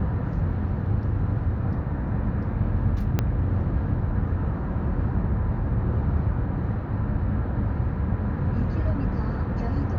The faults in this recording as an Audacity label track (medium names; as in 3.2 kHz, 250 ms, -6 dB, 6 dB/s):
3.190000	3.190000	pop -10 dBFS